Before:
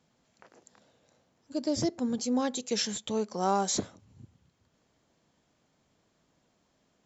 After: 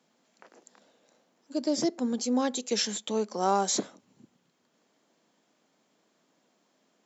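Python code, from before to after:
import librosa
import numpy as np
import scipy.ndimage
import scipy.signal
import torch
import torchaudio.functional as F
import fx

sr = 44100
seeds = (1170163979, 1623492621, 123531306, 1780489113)

y = scipy.signal.sosfilt(scipy.signal.butter(4, 200.0, 'highpass', fs=sr, output='sos'), x)
y = y * librosa.db_to_amplitude(2.0)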